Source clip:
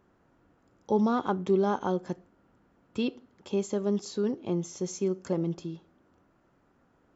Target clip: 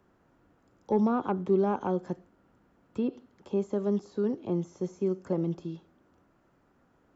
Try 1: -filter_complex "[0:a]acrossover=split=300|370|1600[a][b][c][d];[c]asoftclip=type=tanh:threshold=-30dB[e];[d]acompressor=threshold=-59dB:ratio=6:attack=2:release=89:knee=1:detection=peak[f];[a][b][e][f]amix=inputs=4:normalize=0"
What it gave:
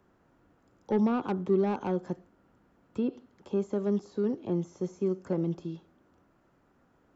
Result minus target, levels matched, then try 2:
soft clip: distortion +12 dB
-filter_complex "[0:a]acrossover=split=300|370|1600[a][b][c][d];[c]asoftclip=type=tanh:threshold=-20dB[e];[d]acompressor=threshold=-59dB:ratio=6:attack=2:release=89:knee=1:detection=peak[f];[a][b][e][f]amix=inputs=4:normalize=0"

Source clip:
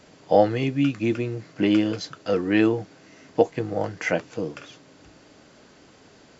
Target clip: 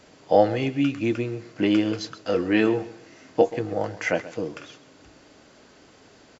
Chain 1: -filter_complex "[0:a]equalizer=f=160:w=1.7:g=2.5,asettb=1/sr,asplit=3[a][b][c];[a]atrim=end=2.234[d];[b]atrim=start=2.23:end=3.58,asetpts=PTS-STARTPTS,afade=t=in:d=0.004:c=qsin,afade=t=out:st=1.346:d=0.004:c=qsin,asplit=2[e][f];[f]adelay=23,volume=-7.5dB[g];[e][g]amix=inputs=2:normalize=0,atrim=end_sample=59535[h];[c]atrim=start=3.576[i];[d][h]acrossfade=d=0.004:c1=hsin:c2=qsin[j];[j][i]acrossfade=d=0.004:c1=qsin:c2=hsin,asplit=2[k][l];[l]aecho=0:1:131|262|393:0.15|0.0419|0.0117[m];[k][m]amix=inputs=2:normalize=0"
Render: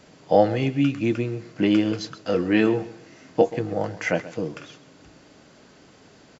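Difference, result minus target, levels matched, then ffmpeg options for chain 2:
125 Hz band +3.0 dB
-filter_complex "[0:a]equalizer=f=160:w=1.7:g=-4,asettb=1/sr,asplit=3[a][b][c];[a]atrim=end=2.234[d];[b]atrim=start=2.23:end=3.58,asetpts=PTS-STARTPTS,afade=t=in:d=0.004:c=qsin,afade=t=out:st=1.346:d=0.004:c=qsin,asplit=2[e][f];[f]adelay=23,volume=-7.5dB[g];[e][g]amix=inputs=2:normalize=0,atrim=end_sample=59535[h];[c]atrim=start=3.576[i];[d][h]acrossfade=d=0.004:c1=hsin:c2=qsin[j];[j][i]acrossfade=d=0.004:c1=qsin:c2=hsin,asplit=2[k][l];[l]aecho=0:1:131|262|393:0.15|0.0419|0.0117[m];[k][m]amix=inputs=2:normalize=0"

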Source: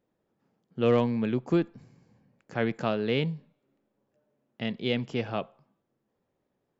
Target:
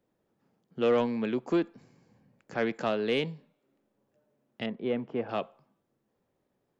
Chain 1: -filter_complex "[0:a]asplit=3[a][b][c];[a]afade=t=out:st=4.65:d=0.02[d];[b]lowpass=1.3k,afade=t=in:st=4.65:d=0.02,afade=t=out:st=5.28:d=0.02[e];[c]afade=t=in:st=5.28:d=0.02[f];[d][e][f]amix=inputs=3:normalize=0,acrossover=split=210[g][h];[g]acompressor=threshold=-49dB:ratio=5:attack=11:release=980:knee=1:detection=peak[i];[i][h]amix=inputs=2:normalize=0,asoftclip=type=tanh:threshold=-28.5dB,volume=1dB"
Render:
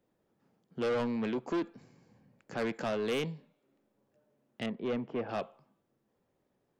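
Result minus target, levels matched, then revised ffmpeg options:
soft clip: distortion +12 dB
-filter_complex "[0:a]asplit=3[a][b][c];[a]afade=t=out:st=4.65:d=0.02[d];[b]lowpass=1.3k,afade=t=in:st=4.65:d=0.02,afade=t=out:st=5.28:d=0.02[e];[c]afade=t=in:st=5.28:d=0.02[f];[d][e][f]amix=inputs=3:normalize=0,acrossover=split=210[g][h];[g]acompressor=threshold=-49dB:ratio=5:attack=11:release=980:knee=1:detection=peak[i];[i][h]amix=inputs=2:normalize=0,asoftclip=type=tanh:threshold=-17dB,volume=1dB"

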